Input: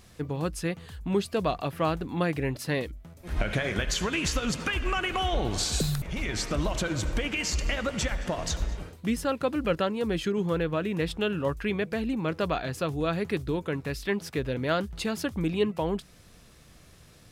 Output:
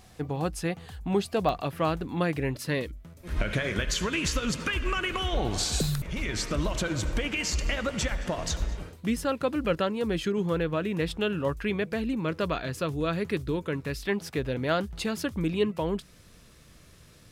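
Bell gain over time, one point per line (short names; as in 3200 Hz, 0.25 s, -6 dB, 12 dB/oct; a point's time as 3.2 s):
bell 760 Hz 0.24 oct
+10 dB
from 1.49 s -0.5 dB
from 2.55 s -9.5 dB
from 5.37 s +2.5 dB
from 5.87 s -7.5 dB
from 6.79 s -1.5 dB
from 12 s -8 dB
from 13.96 s +2.5 dB
from 15.07 s -6.5 dB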